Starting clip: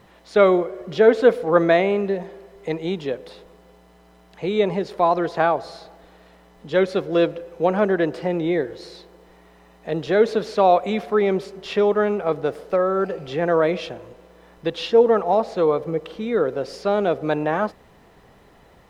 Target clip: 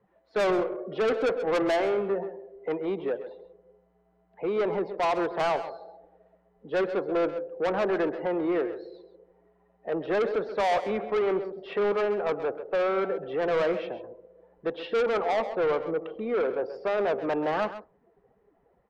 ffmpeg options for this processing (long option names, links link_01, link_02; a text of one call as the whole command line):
ffmpeg -i in.wav -filter_complex "[0:a]afftdn=noise_reduction=19:noise_floor=-41,acrossover=split=260 2200:gain=0.178 1 0.0794[link_01][link_02][link_03];[link_01][link_02][link_03]amix=inputs=3:normalize=0,asoftclip=type=tanh:threshold=-22dB,asplit=2[link_04][link_05];[link_05]aecho=0:1:132:0.237[link_06];[link_04][link_06]amix=inputs=2:normalize=0" out.wav